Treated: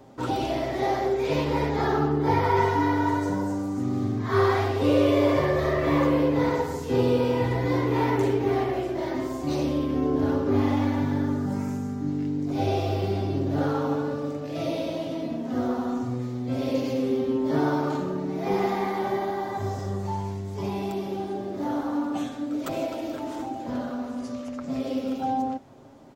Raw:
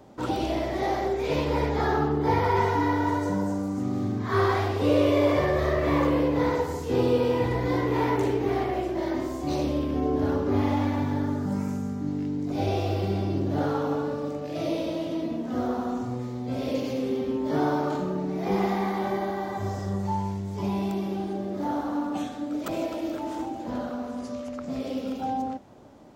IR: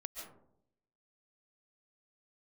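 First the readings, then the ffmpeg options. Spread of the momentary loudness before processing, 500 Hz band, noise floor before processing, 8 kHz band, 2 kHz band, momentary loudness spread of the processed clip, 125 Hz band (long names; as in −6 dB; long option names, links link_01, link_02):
8 LU, +1.0 dB, −35 dBFS, can't be measured, +0.5 dB, 9 LU, +1.0 dB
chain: -af "aecho=1:1:7.5:0.43"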